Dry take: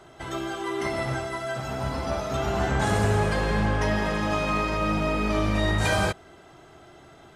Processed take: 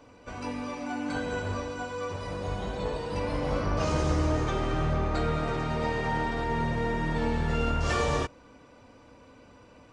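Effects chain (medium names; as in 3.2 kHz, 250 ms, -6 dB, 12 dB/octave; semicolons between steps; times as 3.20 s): speed mistake 45 rpm record played at 33 rpm; trim -3.5 dB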